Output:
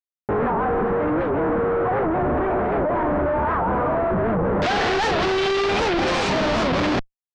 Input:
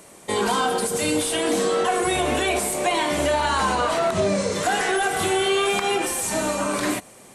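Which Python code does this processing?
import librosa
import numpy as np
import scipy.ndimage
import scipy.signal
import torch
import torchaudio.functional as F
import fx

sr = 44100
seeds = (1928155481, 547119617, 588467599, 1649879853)

y = fx.schmitt(x, sr, flips_db=-25.0)
y = fx.lowpass(y, sr, hz=fx.steps((0.0, 1500.0), (4.62, 5100.0)), slope=24)
y = fx.record_warp(y, sr, rpm=78.0, depth_cents=250.0)
y = y * 10.0 ** (2.5 / 20.0)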